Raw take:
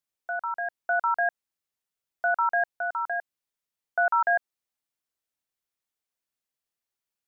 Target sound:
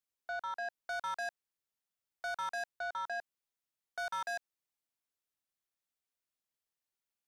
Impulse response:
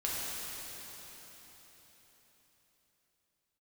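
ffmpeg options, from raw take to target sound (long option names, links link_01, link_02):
-filter_complex "[0:a]acrossover=split=790[link_01][link_02];[link_01]alimiter=level_in=10dB:limit=-24dB:level=0:latency=1,volume=-10dB[link_03];[link_02]asoftclip=type=tanh:threshold=-34dB[link_04];[link_03][link_04]amix=inputs=2:normalize=0,volume=-4.5dB"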